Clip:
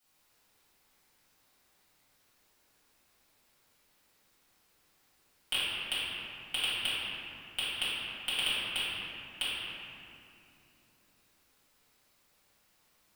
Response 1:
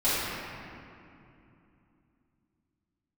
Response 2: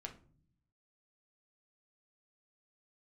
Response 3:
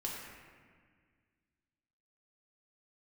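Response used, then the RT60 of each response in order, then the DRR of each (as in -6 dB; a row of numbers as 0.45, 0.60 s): 1; 2.7, 0.50, 1.7 s; -13.5, 2.0, -4.0 dB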